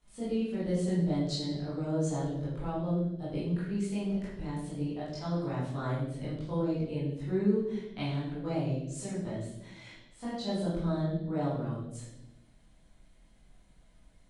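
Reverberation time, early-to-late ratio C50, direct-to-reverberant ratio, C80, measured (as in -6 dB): 0.95 s, 0.5 dB, -10.5 dB, 4.5 dB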